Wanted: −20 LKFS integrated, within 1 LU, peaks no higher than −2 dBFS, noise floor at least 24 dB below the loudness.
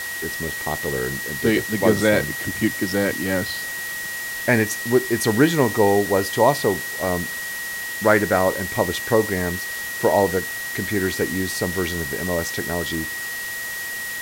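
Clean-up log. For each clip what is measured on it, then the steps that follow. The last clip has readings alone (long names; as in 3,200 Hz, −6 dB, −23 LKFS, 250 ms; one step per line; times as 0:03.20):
interfering tone 1,900 Hz; level of the tone −28 dBFS; background noise floor −30 dBFS; target noise floor −46 dBFS; integrated loudness −21.5 LKFS; sample peak −2.0 dBFS; target loudness −20.0 LKFS
→ notch filter 1,900 Hz, Q 30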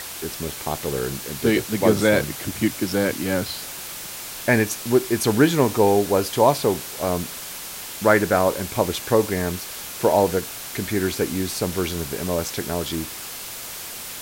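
interfering tone none found; background noise floor −35 dBFS; target noise floor −47 dBFS
→ broadband denoise 12 dB, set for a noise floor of −35 dBFS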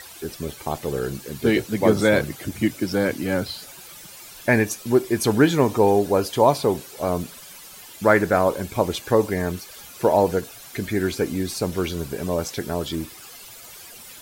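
background noise floor −43 dBFS; target noise floor −47 dBFS
→ broadband denoise 6 dB, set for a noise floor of −43 dBFS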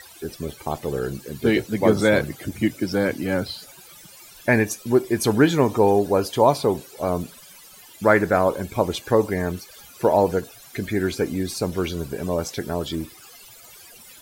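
background noise floor −46 dBFS; target noise floor −47 dBFS
→ broadband denoise 6 dB, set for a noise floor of −46 dBFS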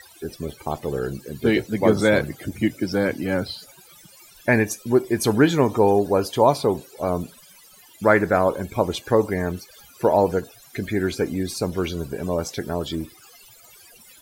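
background noise floor −50 dBFS; integrated loudness −22.5 LKFS; sample peak −2.5 dBFS; target loudness −20.0 LKFS
→ level +2.5 dB
brickwall limiter −2 dBFS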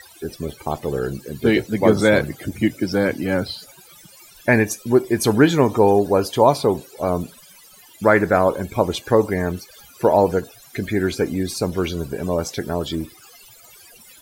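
integrated loudness −20.0 LKFS; sample peak −2.0 dBFS; background noise floor −48 dBFS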